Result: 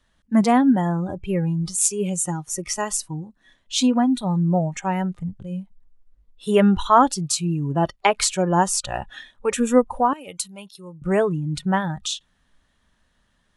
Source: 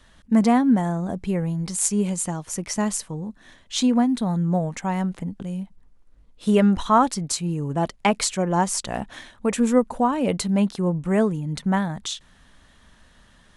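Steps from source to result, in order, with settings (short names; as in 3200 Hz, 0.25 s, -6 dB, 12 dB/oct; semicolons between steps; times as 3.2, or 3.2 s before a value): spectral noise reduction 15 dB; 10.13–11.02 pre-emphasis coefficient 0.9; gain +3 dB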